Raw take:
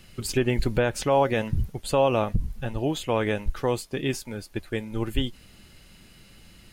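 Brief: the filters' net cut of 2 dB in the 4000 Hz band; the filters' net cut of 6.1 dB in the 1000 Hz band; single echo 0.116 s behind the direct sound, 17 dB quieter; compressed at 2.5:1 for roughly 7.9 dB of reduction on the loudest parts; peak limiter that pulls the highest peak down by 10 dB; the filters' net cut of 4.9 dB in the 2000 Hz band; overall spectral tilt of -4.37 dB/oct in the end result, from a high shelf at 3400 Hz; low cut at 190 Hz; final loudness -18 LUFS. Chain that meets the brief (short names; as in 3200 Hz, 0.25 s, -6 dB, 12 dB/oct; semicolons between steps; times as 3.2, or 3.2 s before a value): HPF 190 Hz; bell 1000 Hz -7.5 dB; bell 2000 Hz -5 dB; high shelf 3400 Hz +6 dB; bell 4000 Hz -4.5 dB; compressor 2.5:1, threshold -31 dBFS; limiter -28 dBFS; echo 0.116 s -17 dB; gain +21 dB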